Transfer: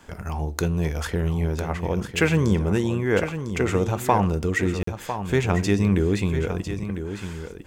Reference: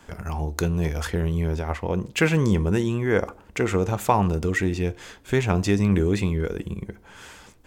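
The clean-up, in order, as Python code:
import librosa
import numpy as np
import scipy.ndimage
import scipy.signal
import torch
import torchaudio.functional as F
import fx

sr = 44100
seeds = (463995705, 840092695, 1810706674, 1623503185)

y = fx.fix_declick_ar(x, sr, threshold=6.5)
y = fx.fix_interpolate(y, sr, at_s=(4.83,), length_ms=44.0)
y = fx.fix_echo_inverse(y, sr, delay_ms=1002, level_db=-9.5)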